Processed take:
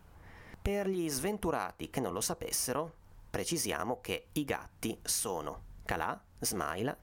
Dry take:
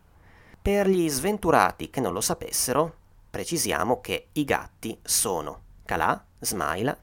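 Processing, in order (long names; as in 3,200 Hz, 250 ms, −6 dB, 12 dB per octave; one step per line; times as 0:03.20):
downward compressor 6 to 1, threshold −31 dBFS, peak gain reduction 17 dB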